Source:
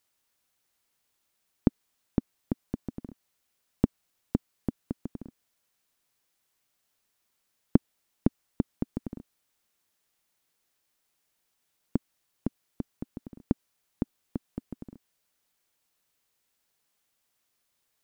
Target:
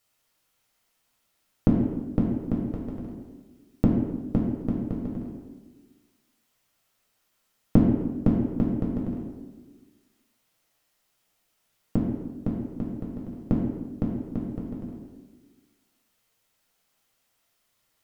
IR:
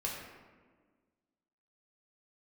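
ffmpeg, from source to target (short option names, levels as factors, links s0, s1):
-filter_complex "[0:a]asettb=1/sr,asplit=3[s0][s1][s2];[s0]atrim=end=2.604[s3];[s1]atrim=start=2.6:end=3.03,asetpts=PTS-STARTPTS,afade=t=in:d=0.004:c=qsin,afade=t=out:st=0.426:d=0.004:c=qsin,equalizer=f=200:t=o:w=1.4:g=-6[s4];[s2]atrim=start=3.026[s5];[s3][s4]acrossfade=d=0.004:c1=hsin:c2=qsin[s6];[s6][s5]acrossfade=d=0.004:c1=qsin:c2=hsin[s7];[1:a]atrim=start_sample=2205,asetrate=52920,aresample=44100[s8];[s7][s8]afir=irnorm=-1:irlink=0,volume=1.78"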